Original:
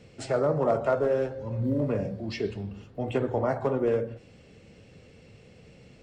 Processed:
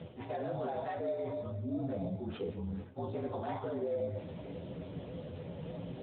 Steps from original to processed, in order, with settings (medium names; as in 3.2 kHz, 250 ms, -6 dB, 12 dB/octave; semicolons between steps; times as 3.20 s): frequency axis rescaled in octaves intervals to 116%; peak limiter -27 dBFS, peak gain reduction 11.5 dB; reverse; compression 6:1, threshold -50 dBFS, peak gain reduction 18 dB; reverse; feedback comb 56 Hz, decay 0.25 s, harmonics odd, mix 70%; in parallel at -4 dB: sample-and-hold 10×; on the sum: thinning echo 144 ms, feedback 54%, high-pass 570 Hz, level -19.5 dB; trim +17 dB; AMR-NB 10.2 kbps 8 kHz